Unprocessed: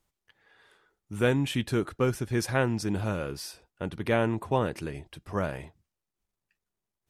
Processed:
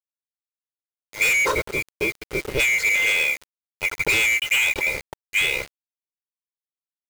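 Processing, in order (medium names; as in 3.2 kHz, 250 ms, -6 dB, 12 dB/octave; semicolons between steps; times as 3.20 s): split-band scrambler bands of 2 kHz; time-frequency box 1.51–2.59 s, 700–6300 Hz -10 dB; level-controlled noise filter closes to 490 Hz, open at -21.5 dBFS; treble shelf 3.5 kHz -6 dB; comb 2.1 ms, depth 72%; waveshaping leveller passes 5; compression 6:1, threshold -18 dBFS, peak gain reduction 4.5 dB; bit crusher 6-bit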